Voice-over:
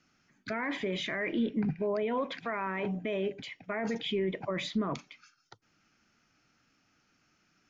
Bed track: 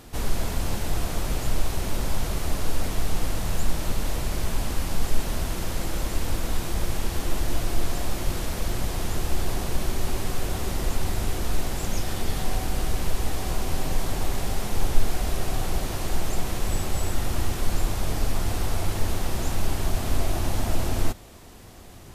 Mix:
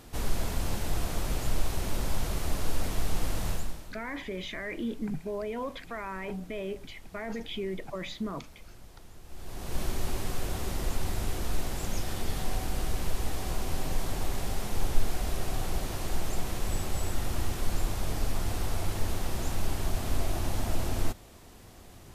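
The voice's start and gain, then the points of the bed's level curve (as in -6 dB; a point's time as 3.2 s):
3.45 s, -3.5 dB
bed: 3.5 s -4 dB
3.99 s -23.5 dB
9.23 s -23.5 dB
9.79 s -5 dB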